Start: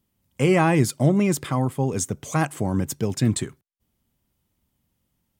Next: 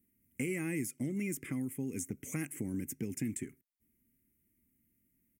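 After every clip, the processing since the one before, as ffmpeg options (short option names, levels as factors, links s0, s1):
-filter_complex "[0:a]firequalizer=gain_entry='entry(150,0);entry(260,11);entry(650,-13);entry(1000,-15);entry(2100,8);entry(3900,-23);entry(5600,-4);entry(11000,10)':delay=0.05:min_phase=1,acrossover=split=2400|6800[s0][s1][s2];[s0]acompressor=threshold=0.0398:ratio=4[s3];[s1]acompressor=threshold=0.0126:ratio=4[s4];[s2]acompressor=threshold=0.0141:ratio=4[s5];[s3][s4][s5]amix=inputs=3:normalize=0,volume=0.398"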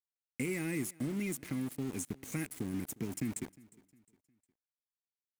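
-af "aeval=exprs='val(0)*gte(abs(val(0)),0.00708)':c=same,aecho=1:1:357|714|1071:0.0708|0.0283|0.0113"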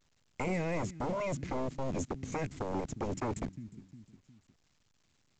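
-filter_complex "[0:a]acrossover=split=220[s0][s1];[s0]aeval=exprs='0.0282*sin(PI/2*5.62*val(0)/0.0282)':c=same[s2];[s2][s1]amix=inputs=2:normalize=0" -ar 16000 -c:a pcm_alaw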